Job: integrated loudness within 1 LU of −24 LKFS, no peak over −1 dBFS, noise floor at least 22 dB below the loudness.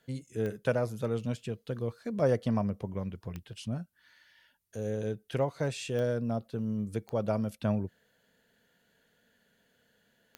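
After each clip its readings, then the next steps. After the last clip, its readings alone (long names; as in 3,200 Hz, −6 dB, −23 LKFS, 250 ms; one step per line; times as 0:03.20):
number of clicks 5; integrated loudness −33.0 LKFS; sample peak −15.5 dBFS; target loudness −24.0 LKFS
→ click removal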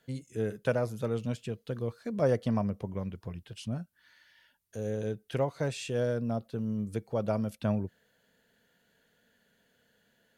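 number of clicks 0; integrated loudness −33.0 LKFS; sample peak −15.5 dBFS; target loudness −24.0 LKFS
→ level +9 dB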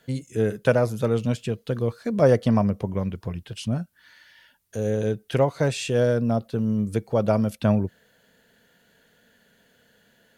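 integrated loudness −24.0 LKFS; sample peak −6.5 dBFS; background noise floor −62 dBFS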